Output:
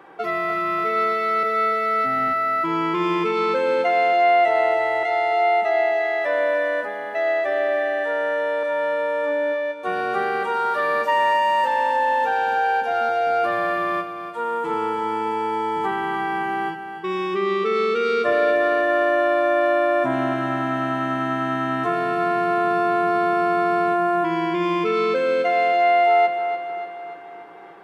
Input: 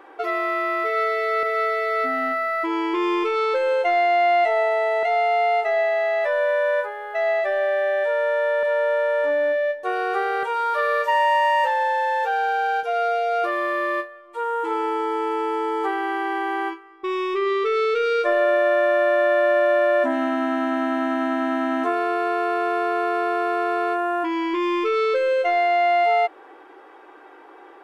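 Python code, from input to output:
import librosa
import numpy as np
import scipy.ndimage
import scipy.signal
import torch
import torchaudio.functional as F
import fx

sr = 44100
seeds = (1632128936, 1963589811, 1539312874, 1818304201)

y = fx.octave_divider(x, sr, octaves=1, level_db=-6.0)
y = fx.highpass(y, sr, hz=130.0, slope=6)
y = fx.echo_feedback(y, sr, ms=292, feedback_pct=54, wet_db=-9.5)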